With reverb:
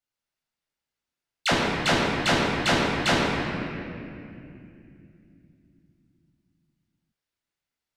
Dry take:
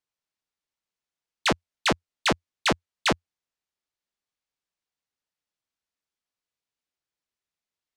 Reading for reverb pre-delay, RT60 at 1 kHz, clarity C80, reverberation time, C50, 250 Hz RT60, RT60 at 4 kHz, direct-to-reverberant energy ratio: 12 ms, 2.3 s, 0.0 dB, 2.6 s, −1.0 dB, 4.3 s, 1.8 s, −6.0 dB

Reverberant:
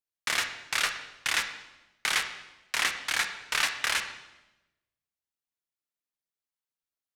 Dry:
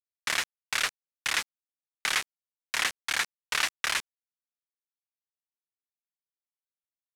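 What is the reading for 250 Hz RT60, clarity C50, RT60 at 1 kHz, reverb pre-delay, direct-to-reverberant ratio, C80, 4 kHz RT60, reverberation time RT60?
1.2 s, 8.5 dB, 0.95 s, 13 ms, 6.0 dB, 10.5 dB, 0.90 s, 1.0 s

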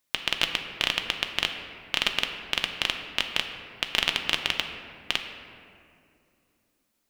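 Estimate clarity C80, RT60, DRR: 7.5 dB, 2.6 s, 4.0 dB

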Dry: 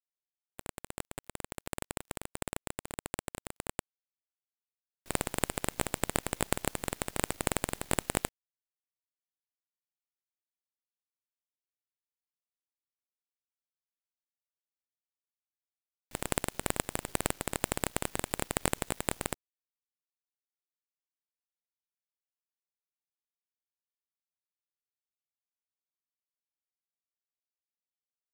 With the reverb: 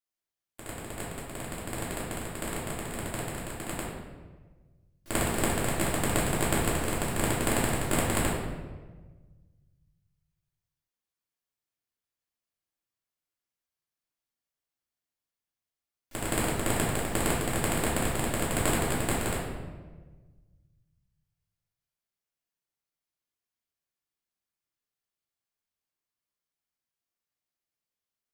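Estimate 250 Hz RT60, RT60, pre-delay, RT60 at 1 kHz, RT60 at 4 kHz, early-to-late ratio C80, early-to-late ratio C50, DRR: 1.7 s, 1.4 s, 3 ms, 1.2 s, 0.90 s, 3.5 dB, 0.5 dB, −8.0 dB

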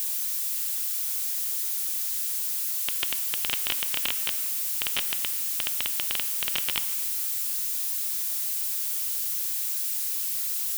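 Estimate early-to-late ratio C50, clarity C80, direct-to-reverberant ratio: 11.5 dB, 12.0 dB, 10.0 dB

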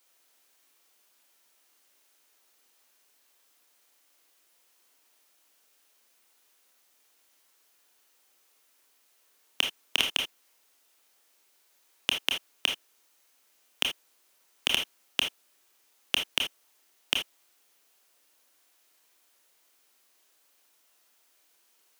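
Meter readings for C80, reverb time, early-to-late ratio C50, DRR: 17.5 dB, non-exponential decay, 7.0 dB, 2.5 dB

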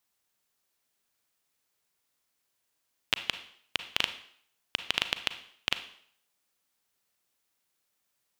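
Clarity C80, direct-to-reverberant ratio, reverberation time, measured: 15.5 dB, 10.0 dB, 0.60 s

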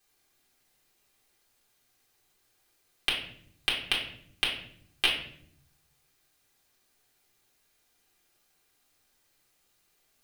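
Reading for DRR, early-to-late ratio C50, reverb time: −6.5 dB, 5.5 dB, 0.65 s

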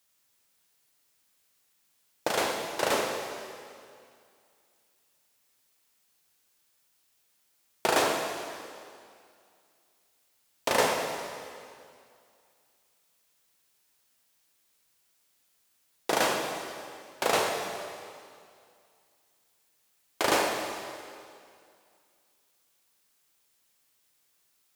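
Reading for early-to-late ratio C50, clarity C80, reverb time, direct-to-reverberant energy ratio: 3.0 dB, 4.0 dB, 2.3 s, 1.5 dB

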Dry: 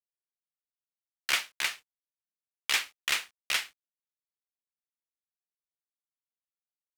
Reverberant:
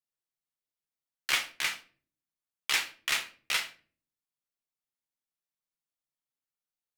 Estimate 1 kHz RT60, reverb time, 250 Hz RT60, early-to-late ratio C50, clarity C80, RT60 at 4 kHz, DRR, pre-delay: 0.35 s, 0.40 s, 0.65 s, 13.5 dB, 19.0 dB, 0.30 s, 4.0 dB, 6 ms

